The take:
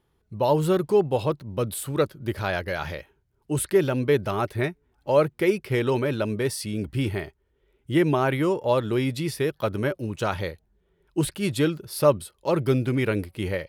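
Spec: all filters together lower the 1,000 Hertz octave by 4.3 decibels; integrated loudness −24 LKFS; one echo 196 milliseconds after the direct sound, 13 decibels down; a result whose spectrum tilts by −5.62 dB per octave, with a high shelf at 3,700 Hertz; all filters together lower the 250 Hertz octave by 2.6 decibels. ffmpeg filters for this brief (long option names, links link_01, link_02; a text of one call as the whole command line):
ffmpeg -i in.wav -af "equalizer=frequency=250:width_type=o:gain=-3.5,equalizer=frequency=1000:width_type=o:gain=-4.5,highshelf=frequency=3700:gain=-9,aecho=1:1:196:0.224,volume=3dB" out.wav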